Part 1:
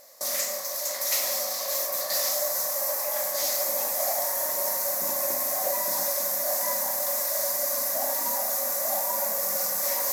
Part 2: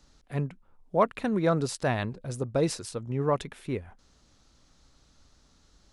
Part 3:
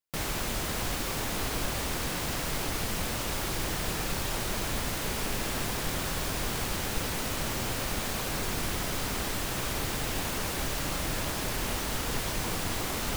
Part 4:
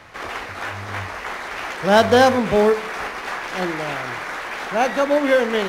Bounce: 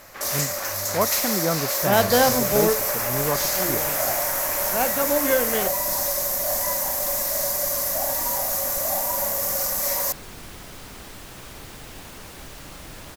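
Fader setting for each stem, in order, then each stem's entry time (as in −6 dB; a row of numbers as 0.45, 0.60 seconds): +2.5, 0.0, −8.5, −5.5 decibels; 0.00, 0.00, 1.80, 0.00 seconds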